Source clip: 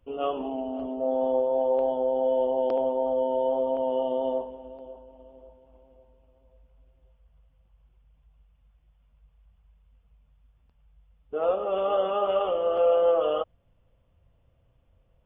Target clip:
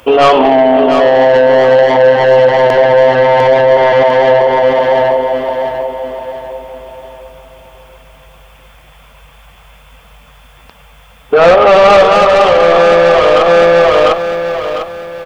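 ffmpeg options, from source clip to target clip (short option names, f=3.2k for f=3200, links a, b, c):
-filter_complex "[0:a]highpass=f=1.2k:p=1,bandreject=f=2.9k:w=12,asplit=2[a][b];[b]acompressor=threshold=-46dB:ratio=4,volume=3dB[c];[a][c]amix=inputs=2:normalize=0,asoftclip=type=tanh:threshold=-33dB,aecho=1:1:700|1400|2100|2800:0.562|0.202|0.0729|0.0262,alimiter=level_in=33.5dB:limit=-1dB:release=50:level=0:latency=1,volume=-1dB"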